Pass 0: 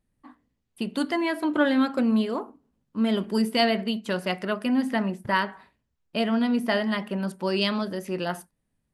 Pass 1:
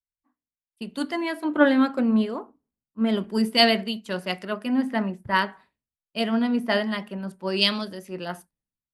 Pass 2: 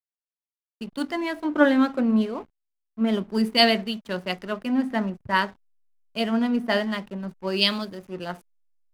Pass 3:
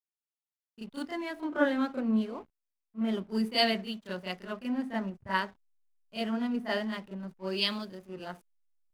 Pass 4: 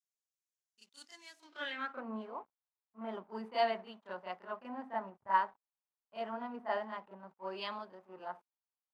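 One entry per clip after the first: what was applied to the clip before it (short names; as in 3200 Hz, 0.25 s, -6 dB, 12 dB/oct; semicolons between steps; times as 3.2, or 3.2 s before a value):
three-band expander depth 100%
backlash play -39 dBFS
reverse echo 32 ms -9 dB; gain -8.5 dB
band-pass sweep 6600 Hz -> 910 Hz, 1.41–2.06; gain +3.5 dB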